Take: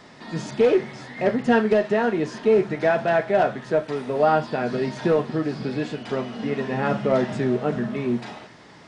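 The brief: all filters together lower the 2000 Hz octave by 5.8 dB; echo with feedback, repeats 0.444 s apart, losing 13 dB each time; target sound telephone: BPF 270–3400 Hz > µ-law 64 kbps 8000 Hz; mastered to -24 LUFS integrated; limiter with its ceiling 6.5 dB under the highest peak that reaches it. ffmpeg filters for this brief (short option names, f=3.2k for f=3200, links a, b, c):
-af "equalizer=f=2k:t=o:g=-7.5,alimiter=limit=-13.5dB:level=0:latency=1,highpass=270,lowpass=3.4k,aecho=1:1:444|888|1332:0.224|0.0493|0.0108,volume=2dB" -ar 8000 -c:a pcm_mulaw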